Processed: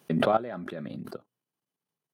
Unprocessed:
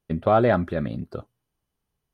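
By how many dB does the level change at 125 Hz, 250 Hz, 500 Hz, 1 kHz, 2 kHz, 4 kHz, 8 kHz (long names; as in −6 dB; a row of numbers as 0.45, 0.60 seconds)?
−9.5 dB, −5.0 dB, −7.0 dB, −5.5 dB, −5.5 dB, +3.0 dB, can't be measured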